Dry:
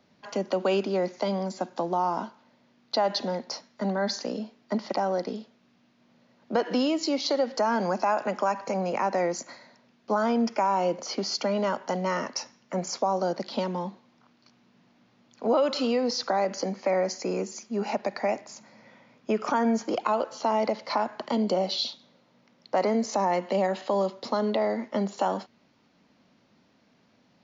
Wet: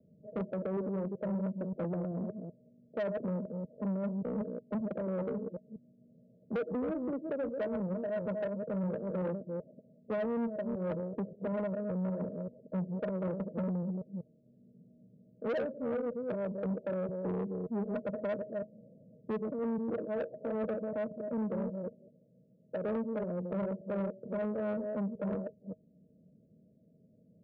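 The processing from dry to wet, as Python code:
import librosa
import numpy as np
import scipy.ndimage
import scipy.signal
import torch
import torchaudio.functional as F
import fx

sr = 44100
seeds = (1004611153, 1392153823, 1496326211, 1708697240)

y = fx.reverse_delay(x, sr, ms=192, wet_db=-6.0)
y = scipy.signal.sosfilt(scipy.signal.cheby1(6, 9, 650.0, 'lowpass', fs=sr, output='sos'), y)
y = fx.low_shelf(y, sr, hz=110.0, db=10.5)
y = fx.rider(y, sr, range_db=3, speed_s=0.5)
y = 10.0 ** (-29.5 / 20.0) * np.tanh(y / 10.0 ** (-29.5 / 20.0))
y = scipy.signal.sosfilt(scipy.signal.butter(2, 43.0, 'highpass', fs=sr, output='sos'), y)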